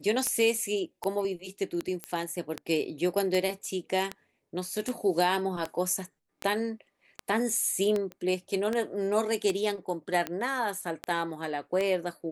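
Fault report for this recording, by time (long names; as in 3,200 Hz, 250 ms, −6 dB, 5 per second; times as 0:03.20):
scratch tick 78 rpm −16 dBFS
0:02.04: click −18 dBFS
0:08.12: click −27 dBFS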